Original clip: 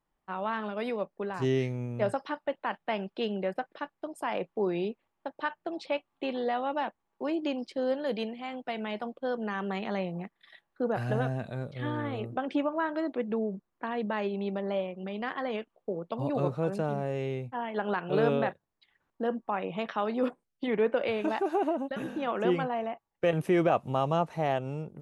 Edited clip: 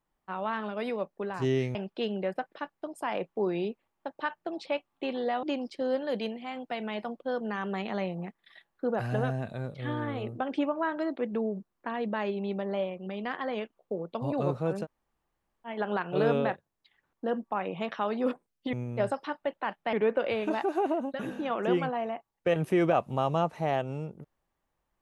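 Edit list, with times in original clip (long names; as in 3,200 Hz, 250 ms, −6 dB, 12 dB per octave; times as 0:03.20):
0:01.75–0:02.95: move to 0:20.70
0:06.63–0:07.40: remove
0:16.81–0:17.64: fill with room tone, crossfade 0.06 s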